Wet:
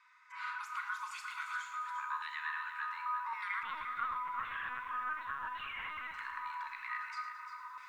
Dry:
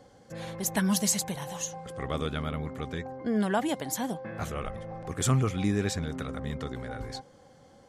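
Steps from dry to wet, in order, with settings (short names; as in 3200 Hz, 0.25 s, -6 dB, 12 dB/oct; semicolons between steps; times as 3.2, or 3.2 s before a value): recorder AGC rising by 10 dB/s; steep high-pass 510 Hz 48 dB/oct; bell 1000 Hz +6 dB 0.21 oct; limiter -25.5 dBFS, peak gain reduction 11 dB; frequency shift +460 Hz; LFO band-pass saw down 0.9 Hz 990–2300 Hz; split-band echo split 1500 Hz, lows 0.472 s, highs 0.111 s, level -12 dB; Schroeder reverb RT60 0.47 s, combs from 25 ms, DRR 6.5 dB; 3.63–6.14 LPC vocoder at 8 kHz pitch kept; lo-fi delay 0.35 s, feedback 35%, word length 11-bit, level -9.5 dB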